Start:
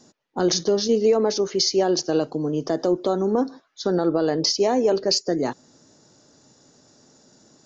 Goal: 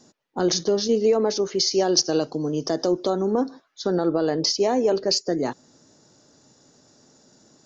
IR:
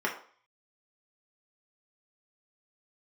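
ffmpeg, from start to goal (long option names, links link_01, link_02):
-filter_complex "[0:a]asettb=1/sr,asplit=3[link_01][link_02][link_03];[link_01]atrim=end=1.714[link_04];[link_02]atrim=start=1.71:end=3.1,asetpts=PTS-STARTPTS,afade=type=in:duration=0.004:curve=qsin,afade=type=out:start_time=1.386:duration=0.004:curve=qsin,lowpass=frequency=5700:width_type=q:width=3.2[link_05];[link_03]atrim=start=3.096[link_06];[link_04][link_05]acrossfade=duration=0.004:curve1=hsin:curve2=qsin[link_07];[link_07][link_06]acrossfade=duration=0.004:curve1=qsin:curve2=hsin,volume=-1dB"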